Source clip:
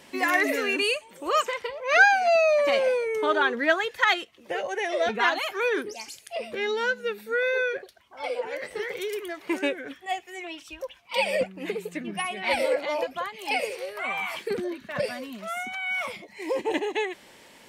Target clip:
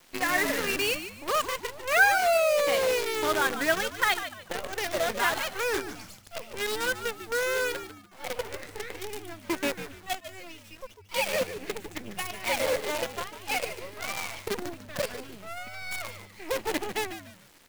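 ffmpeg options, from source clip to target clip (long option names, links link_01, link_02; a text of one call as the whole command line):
ffmpeg -i in.wav -filter_complex "[0:a]acrusher=bits=5:dc=4:mix=0:aa=0.000001,asplit=4[link_01][link_02][link_03][link_04];[link_02]adelay=147,afreqshift=-100,volume=-11dB[link_05];[link_03]adelay=294,afreqshift=-200,volume=-21.2dB[link_06];[link_04]adelay=441,afreqshift=-300,volume=-31.3dB[link_07];[link_01][link_05][link_06][link_07]amix=inputs=4:normalize=0,volume=-3.5dB" out.wav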